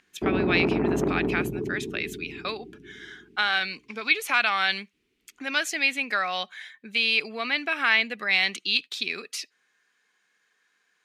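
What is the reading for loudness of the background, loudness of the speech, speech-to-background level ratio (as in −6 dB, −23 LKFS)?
−27.5 LKFS, −26.0 LKFS, 1.5 dB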